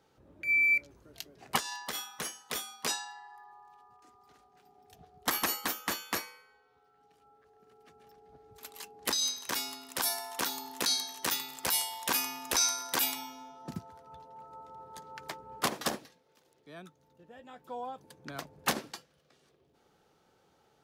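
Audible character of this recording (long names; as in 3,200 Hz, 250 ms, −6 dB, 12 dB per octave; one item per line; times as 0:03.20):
background noise floor −69 dBFS
spectral slope −1.0 dB per octave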